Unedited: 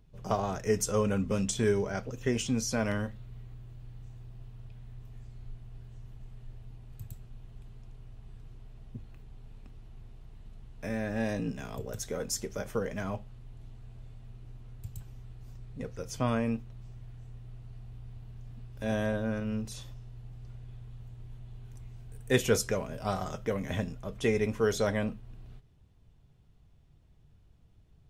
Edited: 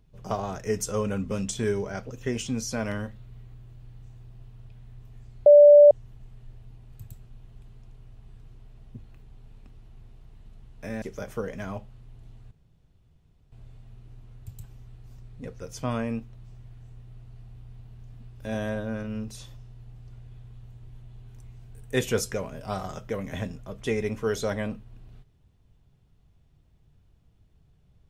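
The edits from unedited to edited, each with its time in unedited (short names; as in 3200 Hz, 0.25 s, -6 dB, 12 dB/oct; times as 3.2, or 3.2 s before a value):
5.46–5.91 bleep 585 Hz -8.5 dBFS
11.02–12.4 cut
13.89 insert room tone 1.01 s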